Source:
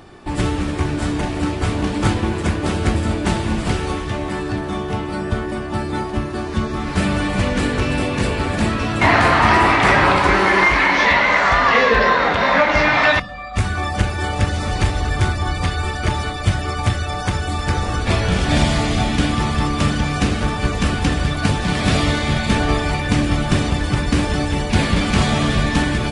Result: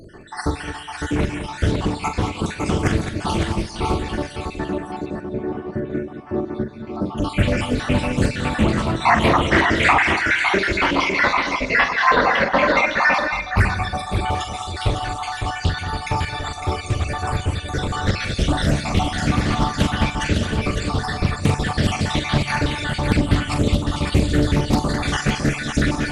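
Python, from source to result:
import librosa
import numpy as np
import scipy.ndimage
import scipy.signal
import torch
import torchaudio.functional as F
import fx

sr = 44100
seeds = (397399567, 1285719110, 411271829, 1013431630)

y = fx.spec_dropout(x, sr, seeds[0], share_pct=74)
y = fx.bandpass_q(y, sr, hz=340.0, q=0.59, at=(4.65, 7.18))
y = fx.echo_multitap(y, sr, ms=(43, 169, 213, 556), db=(-7.5, -14.0, -9.5, -6.0))
y = fx.rev_plate(y, sr, seeds[1], rt60_s=2.2, hf_ratio=1.0, predelay_ms=0, drr_db=15.0)
y = fx.doppler_dist(y, sr, depth_ms=0.39)
y = y * librosa.db_to_amplitude(2.0)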